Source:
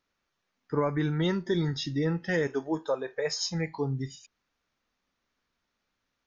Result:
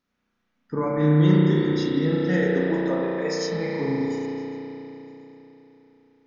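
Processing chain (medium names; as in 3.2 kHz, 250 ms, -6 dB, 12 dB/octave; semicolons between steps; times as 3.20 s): peaking EQ 220 Hz +12 dB 0.66 oct; on a send: repeats whose band climbs or falls 138 ms, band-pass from 300 Hz, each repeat 0.7 oct, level -9.5 dB; on the sum: spring tank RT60 3.7 s, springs 33 ms, chirp 65 ms, DRR -6 dB; trim -2.5 dB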